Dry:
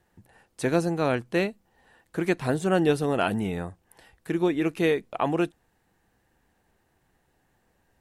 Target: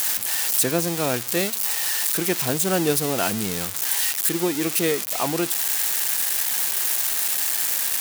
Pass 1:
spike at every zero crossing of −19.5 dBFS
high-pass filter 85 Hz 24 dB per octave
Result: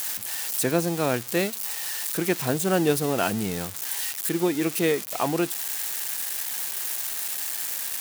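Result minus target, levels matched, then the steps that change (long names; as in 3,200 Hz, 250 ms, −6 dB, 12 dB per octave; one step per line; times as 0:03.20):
spike at every zero crossing: distortion −7 dB
change: spike at every zero crossing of −12.5 dBFS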